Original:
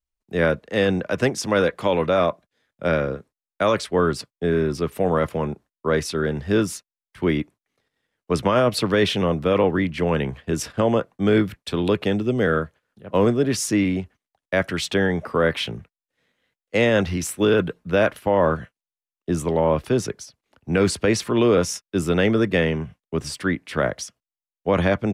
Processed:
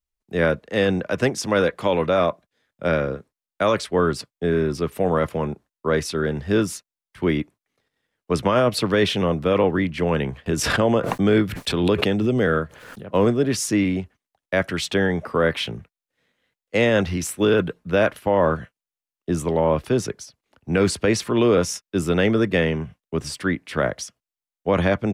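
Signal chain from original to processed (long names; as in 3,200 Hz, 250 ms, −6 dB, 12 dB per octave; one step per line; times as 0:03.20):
0:10.46–0:13.09: background raised ahead of every attack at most 37 dB per second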